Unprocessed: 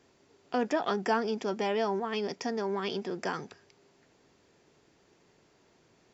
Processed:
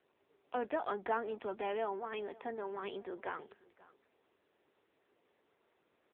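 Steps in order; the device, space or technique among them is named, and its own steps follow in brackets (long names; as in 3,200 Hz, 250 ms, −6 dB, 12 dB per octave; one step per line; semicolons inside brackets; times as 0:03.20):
satellite phone (band-pass filter 350–3,000 Hz; single-tap delay 538 ms −22 dB; level −5 dB; AMR narrowband 6.7 kbit/s 8,000 Hz)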